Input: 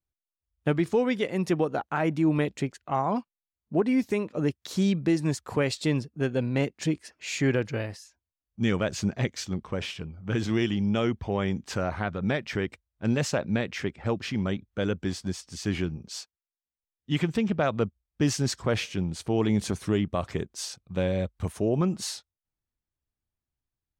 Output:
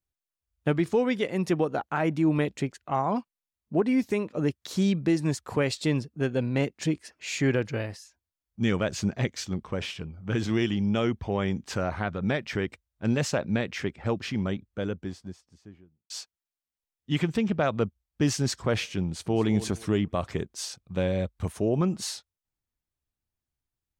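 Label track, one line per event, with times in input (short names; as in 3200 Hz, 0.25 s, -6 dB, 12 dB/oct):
14.160000	16.100000	studio fade out
19.040000	19.460000	echo throw 0.22 s, feedback 30%, level -14.5 dB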